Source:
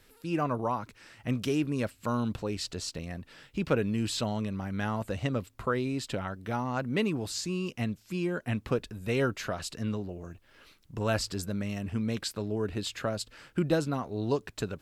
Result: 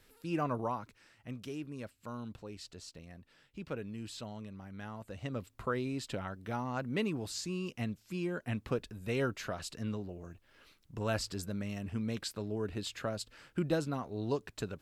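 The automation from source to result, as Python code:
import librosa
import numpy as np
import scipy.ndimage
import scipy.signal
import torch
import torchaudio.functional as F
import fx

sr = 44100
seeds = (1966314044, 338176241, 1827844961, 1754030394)

y = fx.gain(x, sr, db=fx.line((0.61, -4.0), (1.28, -13.0), (5.05, -13.0), (5.5, -5.0)))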